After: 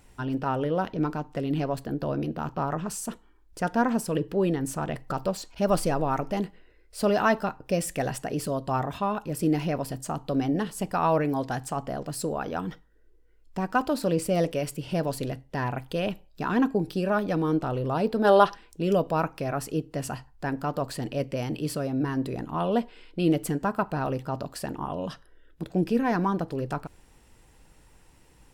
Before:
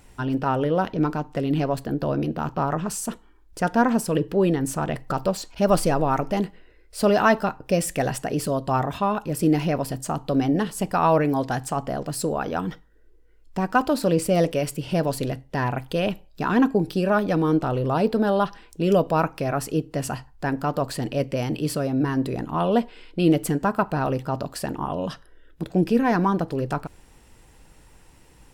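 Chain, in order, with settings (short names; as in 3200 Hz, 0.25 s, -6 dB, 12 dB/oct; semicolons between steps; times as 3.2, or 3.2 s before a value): spectral gain 18.24–18.55, 310–12000 Hz +9 dB; gain -4.5 dB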